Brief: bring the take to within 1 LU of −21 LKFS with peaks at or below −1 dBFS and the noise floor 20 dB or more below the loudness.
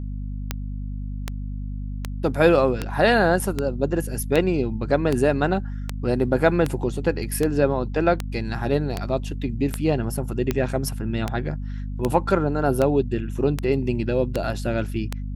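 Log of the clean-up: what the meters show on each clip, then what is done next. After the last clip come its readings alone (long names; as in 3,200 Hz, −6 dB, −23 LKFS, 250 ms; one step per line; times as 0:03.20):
number of clicks 20; mains hum 50 Hz; hum harmonics up to 250 Hz; level of the hum −27 dBFS; integrated loudness −23.5 LKFS; sample peak −3.5 dBFS; target loudness −21.0 LKFS
→ click removal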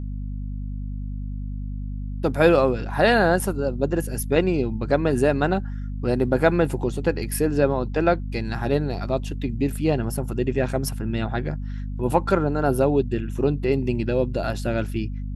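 number of clicks 0; mains hum 50 Hz; hum harmonics up to 250 Hz; level of the hum −27 dBFS
→ hum removal 50 Hz, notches 5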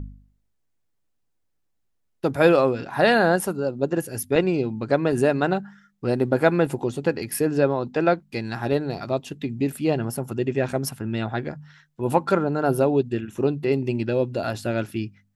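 mains hum none found; integrated loudness −23.5 LKFS; sample peak −4.0 dBFS; target loudness −21.0 LKFS
→ level +2.5 dB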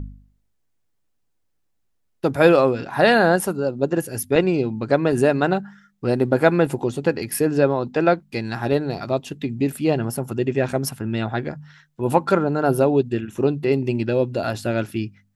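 integrated loudness −21.0 LKFS; sample peak −1.5 dBFS; background noise floor −69 dBFS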